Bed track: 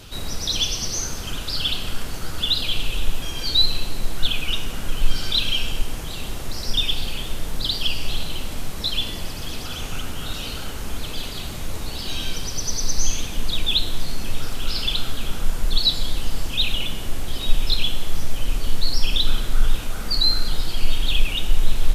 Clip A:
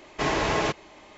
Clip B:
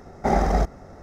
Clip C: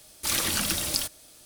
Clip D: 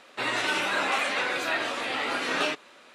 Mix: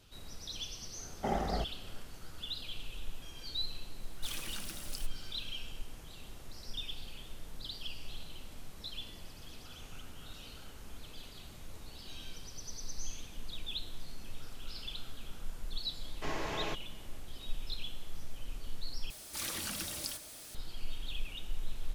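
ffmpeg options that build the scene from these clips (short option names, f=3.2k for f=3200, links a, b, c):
-filter_complex "[3:a]asplit=2[a][b];[0:a]volume=-19.5dB[c];[2:a]highpass=53[d];[b]aeval=exprs='val(0)+0.5*0.0282*sgn(val(0))':c=same[e];[c]asplit=2[f][g];[f]atrim=end=19.104[h];[e]atrim=end=1.45,asetpts=PTS-STARTPTS,volume=-14dB[i];[g]atrim=start=20.546[j];[d]atrim=end=1.02,asetpts=PTS-STARTPTS,volume=-12.5dB,afade=t=in:d=0.004:c=hsin,afade=t=out:st=1.016:d=0.004:c=hsin,adelay=990[k];[a]atrim=end=1.45,asetpts=PTS-STARTPTS,volume=-18dB,afade=t=in:d=0.004:c=hsin,afade=t=out:st=1.446:d=0.004:c=hsin,adelay=3990[l];[1:a]atrim=end=1.17,asetpts=PTS-STARTPTS,volume=-13.5dB,afade=t=in:d=0.004:c=hsin,afade=t=out:st=1.166:d=0.004:c=hsin,adelay=16030[m];[h][i]acrossfade=d=0.004:c1=hsin:c2=hsin[n];[n][j]acrossfade=d=0.004:c1=hsin:c2=hsin[o];[o][k][l][m]amix=inputs=4:normalize=0"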